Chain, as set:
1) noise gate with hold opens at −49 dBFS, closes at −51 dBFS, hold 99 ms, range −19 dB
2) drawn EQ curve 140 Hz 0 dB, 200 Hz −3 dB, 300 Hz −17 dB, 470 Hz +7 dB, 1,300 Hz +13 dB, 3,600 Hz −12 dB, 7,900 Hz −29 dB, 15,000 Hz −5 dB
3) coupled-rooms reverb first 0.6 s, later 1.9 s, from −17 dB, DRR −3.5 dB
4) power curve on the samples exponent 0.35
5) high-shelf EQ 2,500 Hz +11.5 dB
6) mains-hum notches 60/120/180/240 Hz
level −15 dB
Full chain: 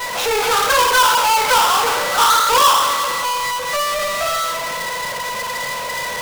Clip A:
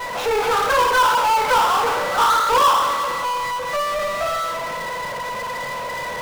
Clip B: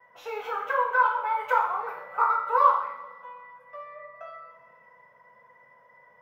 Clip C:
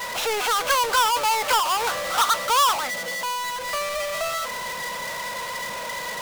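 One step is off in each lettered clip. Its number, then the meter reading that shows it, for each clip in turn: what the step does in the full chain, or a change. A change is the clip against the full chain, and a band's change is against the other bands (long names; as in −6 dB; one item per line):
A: 5, 8 kHz band −8.5 dB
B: 4, change in crest factor +5.5 dB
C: 3, change in integrated loudness −7.0 LU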